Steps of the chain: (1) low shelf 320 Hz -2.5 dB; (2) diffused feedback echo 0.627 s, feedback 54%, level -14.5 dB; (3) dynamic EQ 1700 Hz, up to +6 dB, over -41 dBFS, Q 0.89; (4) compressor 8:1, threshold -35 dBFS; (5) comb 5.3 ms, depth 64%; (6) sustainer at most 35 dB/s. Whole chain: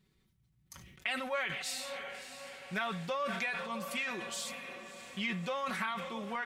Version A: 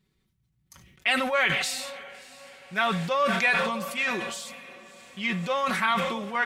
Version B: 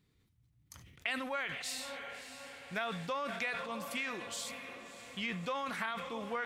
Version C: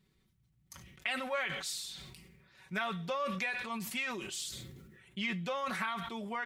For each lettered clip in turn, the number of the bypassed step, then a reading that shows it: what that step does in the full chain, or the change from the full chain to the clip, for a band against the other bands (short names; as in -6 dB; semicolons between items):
4, mean gain reduction 5.0 dB; 5, crest factor change +2.5 dB; 2, momentary loudness spread change +5 LU